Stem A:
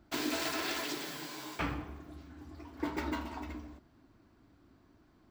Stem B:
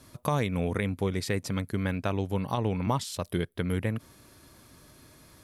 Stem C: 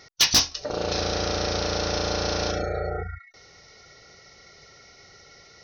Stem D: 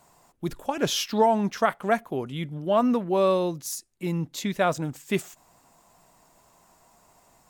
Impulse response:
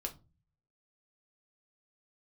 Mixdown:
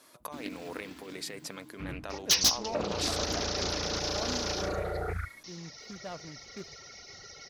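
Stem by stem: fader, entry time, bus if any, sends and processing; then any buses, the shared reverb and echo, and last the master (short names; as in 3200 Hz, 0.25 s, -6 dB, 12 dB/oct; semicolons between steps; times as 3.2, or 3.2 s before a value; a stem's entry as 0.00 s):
-17.0 dB, 0.20 s, no send, resonant low shelf 350 Hz +14 dB, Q 1.5
-3.5 dB, 0.00 s, no send, negative-ratio compressor -30 dBFS, ratio -0.5; HPF 440 Hz 12 dB/oct
+2.5 dB, 2.10 s, no send, limiter -23.5 dBFS, peak gain reduction 11 dB; reverb removal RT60 1.1 s; high shelf 6300 Hz +11.5 dB
-17.0 dB, 1.45 s, no send, median filter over 25 samples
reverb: off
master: Doppler distortion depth 0.31 ms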